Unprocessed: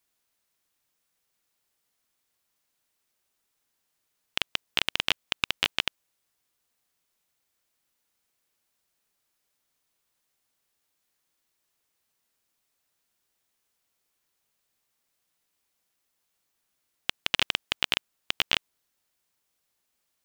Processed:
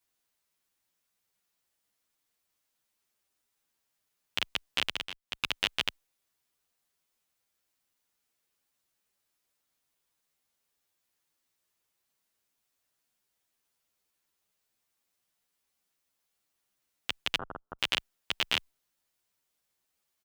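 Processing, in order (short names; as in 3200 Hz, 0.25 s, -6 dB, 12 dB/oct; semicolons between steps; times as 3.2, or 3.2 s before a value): 4.83–5.5 dip -14 dB, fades 0.29 s; 17.37–17.79 elliptic low-pass 1400 Hz, stop band 40 dB; endless flanger 9.6 ms +0.28 Hz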